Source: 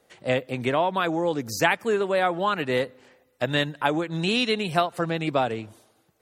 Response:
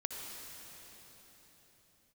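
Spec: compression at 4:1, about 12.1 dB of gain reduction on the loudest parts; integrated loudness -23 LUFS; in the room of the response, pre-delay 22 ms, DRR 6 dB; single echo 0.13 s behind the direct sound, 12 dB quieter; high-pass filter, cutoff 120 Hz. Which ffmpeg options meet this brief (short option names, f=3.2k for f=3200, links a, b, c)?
-filter_complex "[0:a]highpass=120,acompressor=threshold=-32dB:ratio=4,aecho=1:1:130:0.251,asplit=2[a][b];[1:a]atrim=start_sample=2205,adelay=22[c];[b][c]afir=irnorm=-1:irlink=0,volume=-7dB[d];[a][d]amix=inputs=2:normalize=0,volume=11dB"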